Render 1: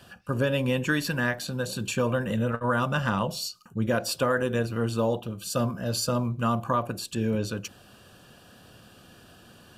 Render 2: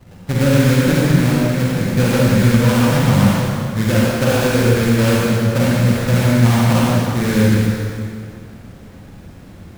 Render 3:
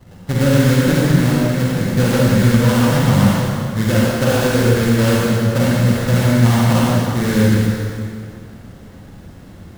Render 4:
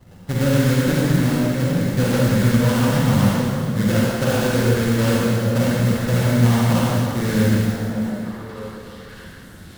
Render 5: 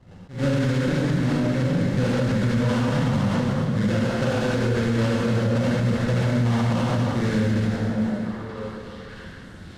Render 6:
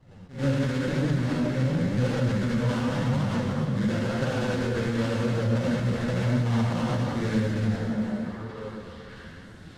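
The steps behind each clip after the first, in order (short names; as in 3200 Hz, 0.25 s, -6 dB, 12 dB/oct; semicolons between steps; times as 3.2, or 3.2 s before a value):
tilt -3.5 dB/oct; sample-rate reducer 2000 Hz, jitter 20%; reverb RT60 2.4 s, pre-delay 38 ms, DRR -5.5 dB
notch 2400 Hz, Q 12
modulation noise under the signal 25 dB; on a send: delay with a stepping band-pass 0.602 s, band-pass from 200 Hz, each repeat 1.4 oct, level -5 dB; on the sum: gain -4 dB
limiter -13.5 dBFS, peak gain reduction 9.5 dB; air absorption 79 m; attack slew limiter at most 160 dB/s
flange 0.93 Hz, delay 6.1 ms, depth 9.7 ms, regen +42%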